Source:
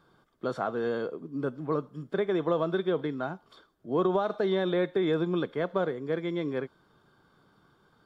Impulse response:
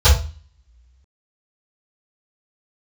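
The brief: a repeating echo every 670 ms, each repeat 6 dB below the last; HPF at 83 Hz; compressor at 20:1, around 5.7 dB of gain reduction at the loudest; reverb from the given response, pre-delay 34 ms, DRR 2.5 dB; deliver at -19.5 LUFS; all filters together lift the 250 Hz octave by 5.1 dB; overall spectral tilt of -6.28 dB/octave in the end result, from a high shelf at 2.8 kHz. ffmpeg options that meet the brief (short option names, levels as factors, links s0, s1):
-filter_complex "[0:a]highpass=83,equalizer=f=250:t=o:g=8,highshelf=f=2800:g=5.5,acompressor=threshold=0.0631:ratio=20,aecho=1:1:670|1340|2010|2680|3350|4020:0.501|0.251|0.125|0.0626|0.0313|0.0157,asplit=2[s0][s1];[1:a]atrim=start_sample=2205,adelay=34[s2];[s1][s2]afir=irnorm=-1:irlink=0,volume=0.0562[s3];[s0][s3]amix=inputs=2:normalize=0,volume=2.66"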